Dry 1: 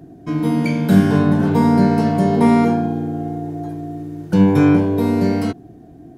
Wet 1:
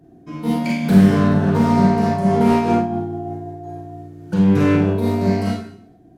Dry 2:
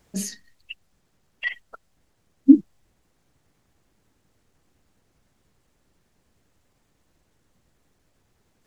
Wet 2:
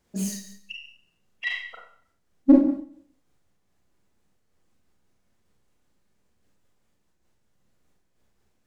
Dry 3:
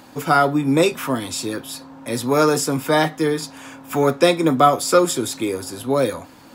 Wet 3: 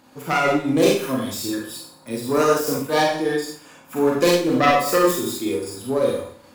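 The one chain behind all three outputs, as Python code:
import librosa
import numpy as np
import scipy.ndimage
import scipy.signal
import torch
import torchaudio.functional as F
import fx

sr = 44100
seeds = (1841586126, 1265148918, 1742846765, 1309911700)

p1 = fx.self_delay(x, sr, depth_ms=0.21)
p2 = fx.noise_reduce_blind(p1, sr, reduce_db=7)
p3 = fx.clip_asym(p2, sr, top_db=-18.0, bottom_db=-6.0)
p4 = p2 + (p3 * 10.0 ** (-8.5 / 20.0))
p5 = fx.rev_schroeder(p4, sr, rt60_s=0.6, comb_ms=31, drr_db=-2.5)
p6 = fx.am_noise(p5, sr, seeds[0], hz=5.7, depth_pct=60)
y = p6 * 10.0 ** (-3.0 / 20.0)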